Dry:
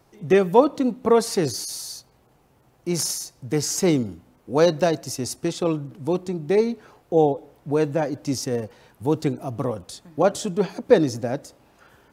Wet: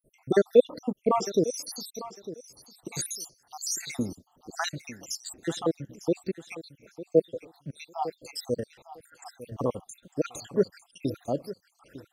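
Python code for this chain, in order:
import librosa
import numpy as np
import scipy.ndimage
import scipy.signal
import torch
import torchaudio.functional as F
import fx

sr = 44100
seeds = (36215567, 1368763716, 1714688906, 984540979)

p1 = fx.spec_dropout(x, sr, seeds[0], share_pct=78)
p2 = fx.peak_eq(p1, sr, hz=95.0, db=-4.5, octaves=2.3)
y = p2 + fx.echo_feedback(p2, sr, ms=902, feedback_pct=16, wet_db=-15, dry=0)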